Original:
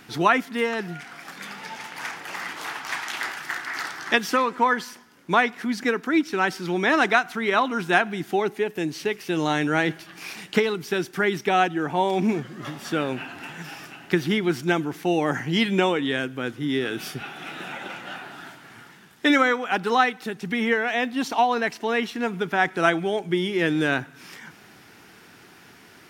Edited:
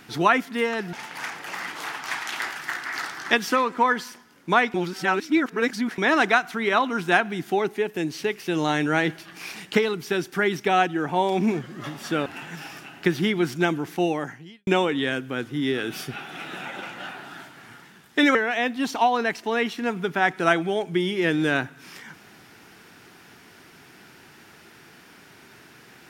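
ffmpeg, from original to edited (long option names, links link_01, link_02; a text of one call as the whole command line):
ffmpeg -i in.wav -filter_complex "[0:a]asplit=7[link_01][link_02][link_03][link_04][link_05][link_06][link_07];[link_01]atrim=end=0.932[link_08];[link_02]atrim=start=1.738:end=5.552[link_09];[link_03]atrim=start=5.548:end=6.792,asetpts=PTS-STARTPTS,areverse[link_10];[link_04]atrim=start=6.788:end=13.072[link_11];[link_05]atrim=start=13.328:end=15.74,asetpts=PTS-STARTPTS,afade=type=out:start_time=1.772:duration=0.64:curve=qua[link_12];[link_06]atrim=start=15.74:end=19.422,asetpts=PTS-STARTPTS,afade=type=in:duration=0.004:curve=hsin[link_13];[link_07]atrim=start=20.718[link_14];[link_08][link_09]acrossfade=duration=0.004:curve1=hsin:curve2=hsin[link_15];[link_15][link_10]acrossfade=duration=0.004:curve1=hsin:curve2=hsin[link_16];[link_16][link_11]acrossfade=duration=0.004:curve1=hsin:curve2=hsin[link_17];[link_12][link_13]concat=n=2:v=0:a=1[link_18];[link_17][link_18]acrossfade=duration=0.004:curve1=hsin:curve2=hsin[link_19];[link_19][link_14]acrossfade=duration=0.004:curve1=hsin:curve2=hsin" out.wav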